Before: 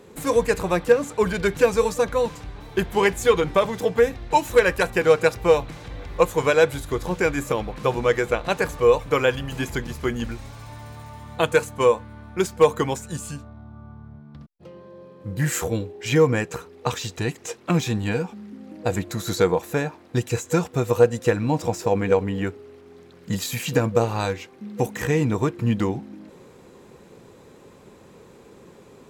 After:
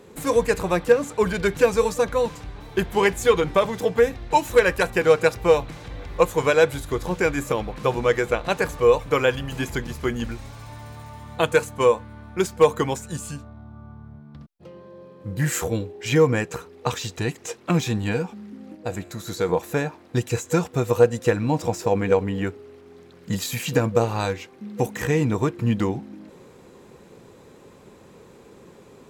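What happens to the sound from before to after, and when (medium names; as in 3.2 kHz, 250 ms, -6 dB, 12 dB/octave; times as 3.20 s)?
18.75–19.49 s: feedback comb 79 Hz, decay 1.1 s, mix 50%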